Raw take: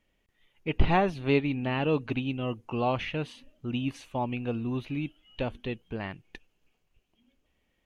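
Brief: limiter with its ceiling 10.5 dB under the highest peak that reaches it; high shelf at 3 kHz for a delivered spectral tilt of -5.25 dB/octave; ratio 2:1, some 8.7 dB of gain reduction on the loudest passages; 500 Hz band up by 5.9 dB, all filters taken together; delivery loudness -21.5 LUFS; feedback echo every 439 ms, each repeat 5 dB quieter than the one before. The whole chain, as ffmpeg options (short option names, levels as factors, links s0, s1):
-af "equalizer=f=500:t=o:g=7,highshelf=f=3000:g=6,acompressor=threshold=0.0224:ratio=2,alimiter=level_in=1.5:limit=0.0631:level=0:latency=1,volume=0.668,aecho=1:1:439|878|1317|1756|2195|2634|3073:0.562|0.315|0.176|0.0988|0.0553|0.031|0.0173,volume=5.62"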